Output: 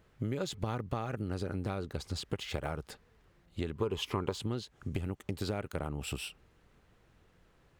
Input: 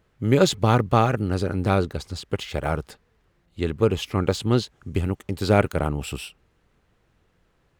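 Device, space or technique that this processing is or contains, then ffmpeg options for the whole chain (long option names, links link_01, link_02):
serial compression, leveller first: -filter_complex "[0:a]acompressor=threshold=-20dB:ratio=2.5,acompressor=threshold=-33dB:ratio=5,asettb=1/sr,asplit=3[link_01][link_02][link_03];[link_01]atrim=end=3.754[link_04];[link_02]atrim=start=3.75:end=4.38,asetpts=PTS-STARTPTS,afade=type=in:duration=0.004:curve=qsin,afade=type=out:start_time=0.626:duration=0.004:curve=qsin,equalizer=frequency=400:width_type=o:width=0.33:gain=7,equalizer=frequency=1000:width_type=o:width=0.33:gain=12,equalizer=frequency=3150:width_type=o:width=0.33:gain=4[link_05];[link_03]atrim=start=4.376[link_06];[link_04][link_05]acrossfade=duration=0.004:curve1=hsin:curve2=qsin[link_07];[link_07][link_06]acrossfade=duration=0.004:curve1=qsin:curve2=hsin"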